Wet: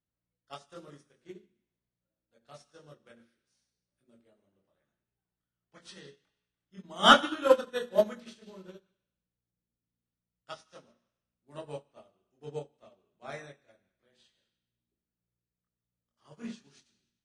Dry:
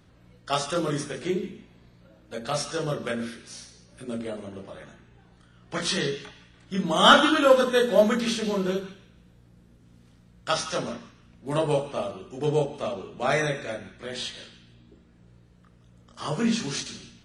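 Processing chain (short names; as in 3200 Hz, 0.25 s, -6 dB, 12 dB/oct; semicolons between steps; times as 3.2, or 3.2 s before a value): on a send: thinning echo 98 ms, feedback 57%, high-pass 350 Hz, level -15 dB; on the sum: upward expander 2.5:1, over -34 dBFS; gain -1 dB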